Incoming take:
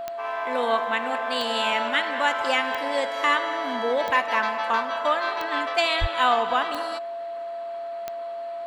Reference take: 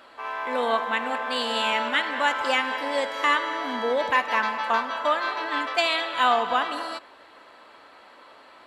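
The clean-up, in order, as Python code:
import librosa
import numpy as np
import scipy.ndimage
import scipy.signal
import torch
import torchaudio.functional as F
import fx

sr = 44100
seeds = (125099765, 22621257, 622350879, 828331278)

y = fx.fix_declick_ar(x, sr, threshold=10.0)
y = fx.notch(y, sr, hz=680.0, q=30.0)
y = fx.highpass(y, sr, hz=140.0, slope=24, at=(6.0, 6.12), fade=0.02)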